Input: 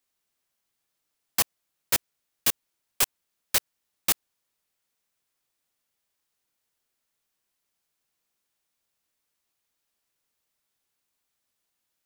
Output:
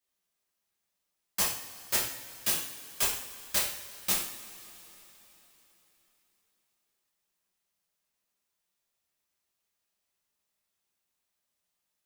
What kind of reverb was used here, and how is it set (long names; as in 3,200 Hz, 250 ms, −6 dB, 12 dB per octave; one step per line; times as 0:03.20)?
coupled-rooms reverb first 0.55 s, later 4 s, from −19 dB, DRR −5.5 dB
level −9 dB